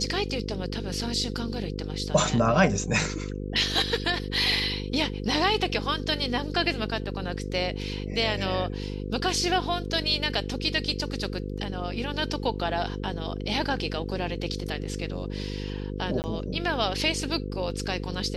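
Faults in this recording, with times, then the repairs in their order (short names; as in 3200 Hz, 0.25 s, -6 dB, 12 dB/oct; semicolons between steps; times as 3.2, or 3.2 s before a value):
buzz 50 Hz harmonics 10 -33 dBFS
16.22–16.24 gap 19 ms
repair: de-hum 50 Hz, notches 10; interpolate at 16.22, 19 ms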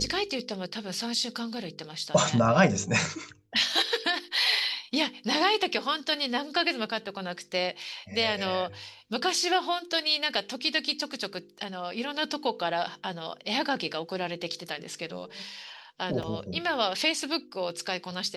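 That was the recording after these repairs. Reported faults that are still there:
none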